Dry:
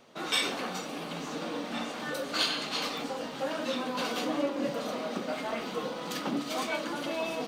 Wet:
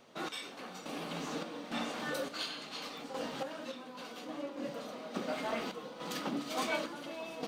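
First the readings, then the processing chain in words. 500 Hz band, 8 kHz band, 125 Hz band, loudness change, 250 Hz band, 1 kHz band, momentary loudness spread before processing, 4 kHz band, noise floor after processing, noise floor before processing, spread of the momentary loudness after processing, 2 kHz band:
-6.5 dB, -7.5 dB, -5.0 dB, -7.0 dB, -6.5 dB, -6.0 dB, 7 LU, -9.0 dB, -49 dBFS, -40 dBFS, 8 LU, -6.5 dB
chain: random-step tremolo, depth 80%; trim -1 dB

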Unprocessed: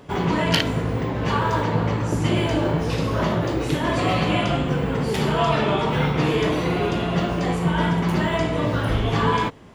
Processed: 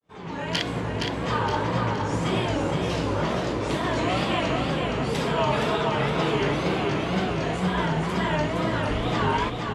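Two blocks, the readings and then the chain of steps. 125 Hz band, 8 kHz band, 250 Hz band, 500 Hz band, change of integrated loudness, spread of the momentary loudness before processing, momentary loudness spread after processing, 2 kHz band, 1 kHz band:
-5.5 dB, -2.5 dB, -4.0 dB, -2.5 dB, -3.5 dB, 3 LU, 3 LU, -2.0 dB, -2.0 dB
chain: fade-in on the opening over 0.76 s; low-pass 10 kHz 24 dB/octave; bass shelf 270 Hz -4.5 dB; wow and flutter 140 cents; on a send: feedback delay 467 ms, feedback 42%, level -4.5 dB; on the sum: trim -3 dB

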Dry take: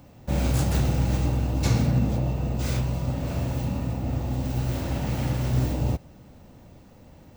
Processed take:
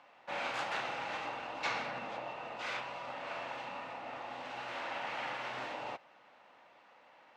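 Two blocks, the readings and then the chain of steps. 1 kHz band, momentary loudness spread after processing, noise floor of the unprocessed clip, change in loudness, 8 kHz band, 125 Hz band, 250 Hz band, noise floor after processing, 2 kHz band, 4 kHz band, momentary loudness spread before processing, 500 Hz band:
-0.5 dB, 7 LU, -51 dBFS, -13.5 dB, -17.5 dB, -36.5 dB, -24.5 dB, -62 dBFS, +1.5 dB, -4.5 dB, 5 LU, -9.0 dB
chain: Butterworth band-pass 1.6 kHz, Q 0.73; trim +2 dB

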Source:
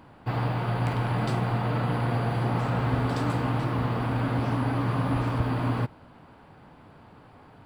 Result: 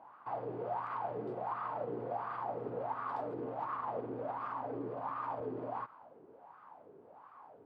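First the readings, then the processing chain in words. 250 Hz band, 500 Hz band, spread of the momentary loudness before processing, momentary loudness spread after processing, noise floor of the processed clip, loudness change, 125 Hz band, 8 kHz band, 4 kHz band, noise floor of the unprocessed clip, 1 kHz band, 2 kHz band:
-17.0 dB, -6.0 dB, 2 LU, 18 LU, -59 dBFS, -12.5 dB, -27.5 dB, no reading, under -25 dB, -52 dBFS, -6.0 dB, -16.0 dB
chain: peak limiter -24 dBFS, peak gain reduction 11 dB; wah-wah 1.4 Hz 390–1200 Hz, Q 6.1; trim +6.5 dB

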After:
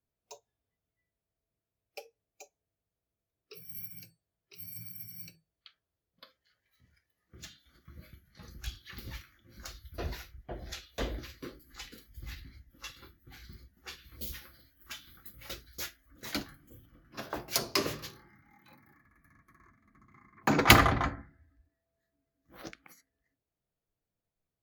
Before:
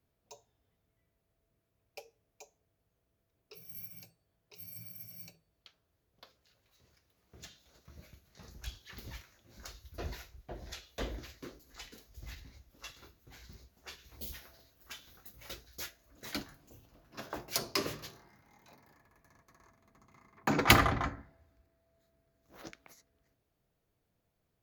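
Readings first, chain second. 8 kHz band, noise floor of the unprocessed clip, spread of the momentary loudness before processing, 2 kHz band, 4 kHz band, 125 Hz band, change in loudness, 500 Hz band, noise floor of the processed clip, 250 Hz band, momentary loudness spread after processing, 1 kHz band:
+3.5 dB, -80 dBFS, 19 LU, +3.5 dB, +3.5 dB, +3.5 dB, +3.5 dB, +3.5 dB, under -85 dBFS, +3.5 dB, 20 LU, +3.5 dB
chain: spectral noise reduction 14 dB; trim +3.5 dB

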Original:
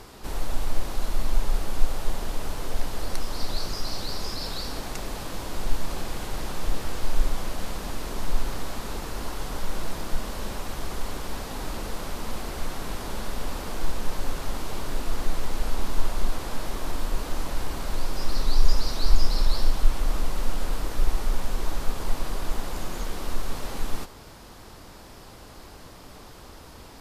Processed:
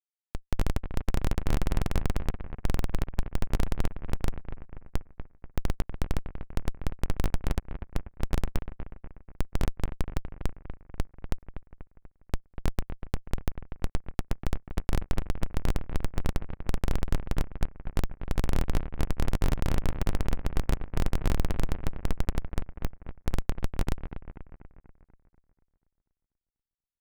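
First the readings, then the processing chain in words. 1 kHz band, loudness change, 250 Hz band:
-5.5 dB, -1.5 dB, +1.0 dB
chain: low-pass that closes with the level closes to 1.7 kHz, closed at -14 dBFS; Schmitt trigger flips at -19 dBFS; bucket-brigade echo 243 ms, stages 4096, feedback 53%, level -10 dB

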